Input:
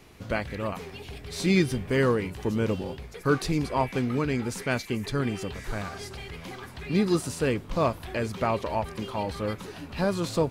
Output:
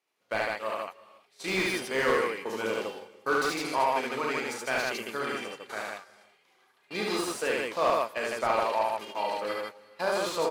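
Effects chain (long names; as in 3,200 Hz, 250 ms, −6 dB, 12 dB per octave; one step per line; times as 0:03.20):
noise gate −31 dBFS, range −26 dB
high-pass filter 590 Hz 12 dB per octave
loudspeakers that aren't time-aligned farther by 13 metres −5 dB, 25 metres −1 dB, 53 metres −2 dB
on a send at −21.5 dB: convolution reverb, pre-delay 136 ms
on the sum: slew-rate limiting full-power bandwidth 110 Hz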